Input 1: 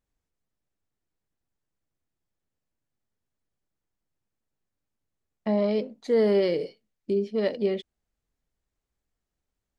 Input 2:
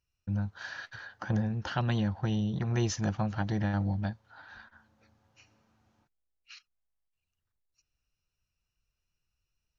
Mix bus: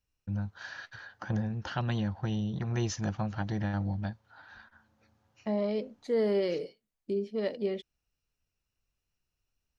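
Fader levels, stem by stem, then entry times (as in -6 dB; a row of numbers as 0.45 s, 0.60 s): -6.0 dB, -2.0 dB; 0.00 s, 0.00 s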